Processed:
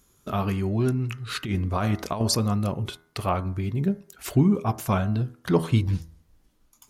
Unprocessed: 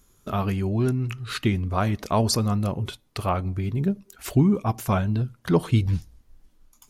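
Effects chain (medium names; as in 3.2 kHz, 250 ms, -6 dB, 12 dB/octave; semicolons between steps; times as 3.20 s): high-pass 58 Hz 6 dB/octave; de-hum 81.55 Hz, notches 26; 1.44–2.21 s: compressor with a negative ratio -24 dBFS, ratio -0.5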